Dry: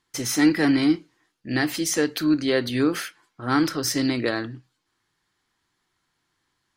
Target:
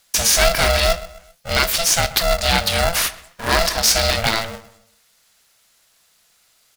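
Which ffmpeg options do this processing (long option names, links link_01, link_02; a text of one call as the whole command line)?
ffmpeg -i in.wav -filter_complex "[0:a]acrossover=split=4600[link_01][link_02];[link_02]acompressor=threshold=-39dB:ratio=4:attack=1:release=60[link_03];[link_01][link_03]amix=inputs=2:normalize=0,highpass=frequency=120:width=0.5412,highpass=frequency=120:width=1.3066,asplit=2[link_04][link_05];[link_05]acompressor=threshold=-26dB:ratio=6,volume=1dB[link_06];[link_04][link_06]amix=inputs=2:normalize=0,crystalizer=i=6:c=0,asplit=2[link_07][link_08];[link_08]adelay=131,lowpass=frequency=1900:poles=1,volume=-16dB,asplit=2[link_09][link_10];[link_10]adelay=131,lowpass=frequency=1900:poles=1,volume=0.39,asplit=2[link_11][link_12];[link_12]adelay=131,lowpass=frequency=1900:poles=1,volume=0.39[link_13];[link_09][link_11][link_13]amix=inputs=3:normalize=0[link_14];[link_07][link_14]amix=inputs=2:normalize=0,asettb=1/sr,asplit=3[link_15][link_16][link_17];[link_15]atrim=end=1.634[link_18];[link_16]atrim=start=1.63:end=2.04,asetpts=PTS-STARTPTS,afade=type=in:duration=0.004:curve=qsin,afade=type=out:start_time=0.406:duration=0.004:curve=qsin,aeval=exprs='sgn(val(0))*max(abs(val(0))-0.0355,0)':channel_layout=same[link_19];[link_17]atrim=start=2.036[link_20];[link_18][link_19]acrossfade=duration=0.004:curve1=hsin:curve2=qsin[link_21];[link_21][link_20]acrossfade=duration=0.004:curve1=qsin:curve2=hsin,aeval=exprs='val(0)*sgn(sin(2*PI*340*n/s))':channel_layout=same,volume=-1.5dB" out.wav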